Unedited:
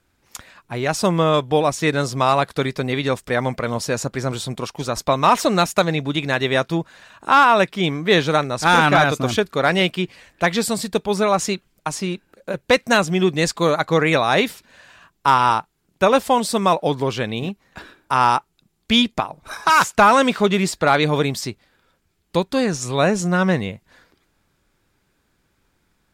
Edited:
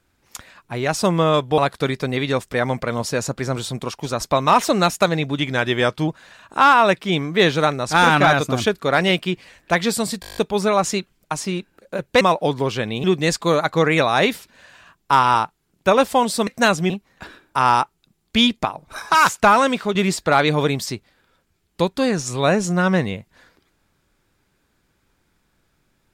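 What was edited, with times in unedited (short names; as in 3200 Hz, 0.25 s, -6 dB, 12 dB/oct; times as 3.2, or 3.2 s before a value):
1.58–2.34 cut
6.14–6.79 speed 93%
10.92 stutter 0.02 s, 9 plays
12.76–13.19 swap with 16.62–17.45
19.94–20.5 fade out linear, to -6 dB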